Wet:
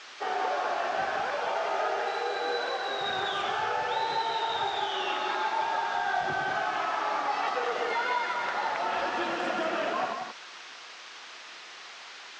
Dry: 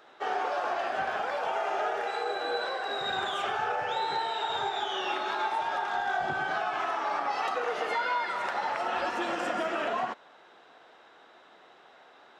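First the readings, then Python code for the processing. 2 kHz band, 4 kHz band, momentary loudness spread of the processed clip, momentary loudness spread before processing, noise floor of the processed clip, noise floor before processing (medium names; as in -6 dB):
+1.5 dB, +2.0 dB, 14 LU, 2 LU, -46 dBFS, -56 dBFS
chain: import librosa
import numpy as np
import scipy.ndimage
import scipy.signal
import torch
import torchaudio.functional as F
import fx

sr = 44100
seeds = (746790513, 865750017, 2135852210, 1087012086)

y = fx.high_shelf(x, sr, hz=4600.0, db=10.0)
y = fx.dmg_noise_band(y, sr, seeds[0], low_hz=950.0, high_hz=7000.0, level_db=-43.0)
y = fx.air_absorb(y, sr, metres=160.0)
y = y + 10.0 ** (-5.5 / 20.0) * np.pad(y, (int(181 * sr / 1000.0), 0))[:len(y)]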